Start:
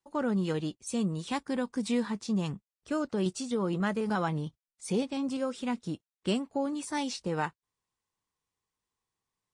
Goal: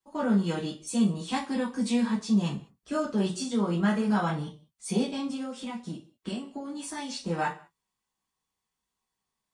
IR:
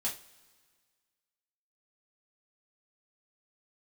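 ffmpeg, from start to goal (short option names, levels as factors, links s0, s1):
-filter_complex "[0:a]asettb=1/sr,asplit=3[s0][s1][s2];[s0]atrim=end=5.264[s3];[s1]atrim=start=5.26:end=7.19,asetpts=PTS-STARTPTS,afade=t=in:d=0.004:c=qsin,afade=t=out:st=1.926:d=0.004:c=qsin,acompressor=threshold=0.02:ratio=6[s4];[s2]atrim=start=7.186[s5];[s3][s4]acrossfade=d=0.004:c1=hsin:c2=qsin[s6];[s6][s5]acrossfade=d=0.004:c1=qsin:c2=hsin[s7];[1:a]atrim=start_sample=2205,afade=t=out:st=0.27:d=0.01,atrim=end_sample=12348[s8];[s7][s8]afir=irnorm=-1:irlink=0"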